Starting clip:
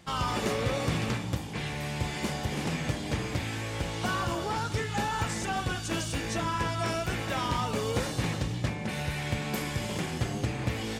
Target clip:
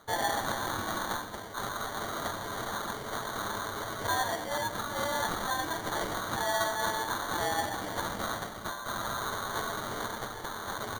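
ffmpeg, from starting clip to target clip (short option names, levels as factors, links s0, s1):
-filter_complex "[0:a]highpass=f=1100:w=0.5412,highpass=f=1100:w=1.3066,aecho=1:1:5.9:0.89,asetrate=29433,aresample=44100,atempo=1.49831,acrusher=samples=17:mix=1:aa=0.000001,asplit=2[s0][s1];[s1]aecho=0:1:124:0.188[s2];[s0][s2]amix=inputs=2:normalize=0,volume=1.26"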